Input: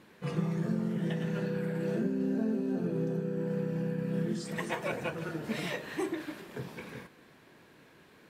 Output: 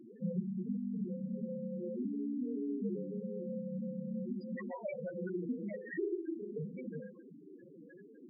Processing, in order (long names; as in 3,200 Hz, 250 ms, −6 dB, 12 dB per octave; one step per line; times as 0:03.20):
downward compressor 6 to 1, threshold −43 dBFS, peak gain reduction 16 dB
on a send: flutter between parallel walls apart 6.7 metres, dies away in 0.36 s
on the sum: frequency shifter +25 Hz
spectral peaks only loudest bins 4
level +9.5 dB